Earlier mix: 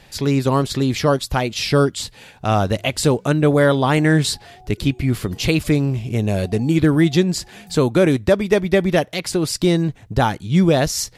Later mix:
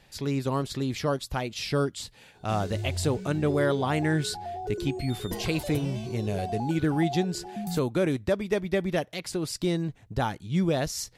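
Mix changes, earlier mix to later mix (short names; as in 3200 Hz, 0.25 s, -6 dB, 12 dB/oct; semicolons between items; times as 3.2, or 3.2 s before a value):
speech -10.5 dB; background +11.0 dB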